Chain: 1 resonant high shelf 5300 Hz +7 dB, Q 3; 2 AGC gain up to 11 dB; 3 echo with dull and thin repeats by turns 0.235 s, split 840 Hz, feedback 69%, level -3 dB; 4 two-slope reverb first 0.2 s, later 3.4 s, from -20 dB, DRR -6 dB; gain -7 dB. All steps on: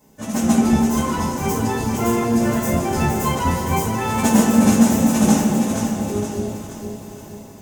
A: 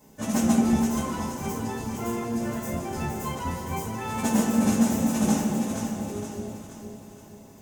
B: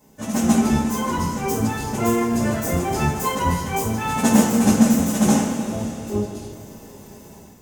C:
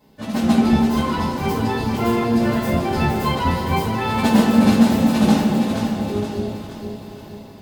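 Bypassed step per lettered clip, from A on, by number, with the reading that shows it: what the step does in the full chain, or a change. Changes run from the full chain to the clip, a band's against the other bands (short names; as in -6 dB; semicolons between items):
2, momentary loudness spread change -1 LU; 3, echo-to-direct 7.5 dB to 6.0 dB; 1, 8 kHz band -11.0 dB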